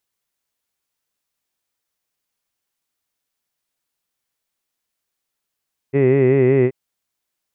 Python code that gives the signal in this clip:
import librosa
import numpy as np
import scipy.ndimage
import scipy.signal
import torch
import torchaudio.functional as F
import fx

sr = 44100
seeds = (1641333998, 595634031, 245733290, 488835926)

y = fx.vowel(sr, seeds[0], length_s=0.78, word='hid', hz=134.0, glide_st=-0.5, vibrato_hz=5.3, vibrato_st=0.9)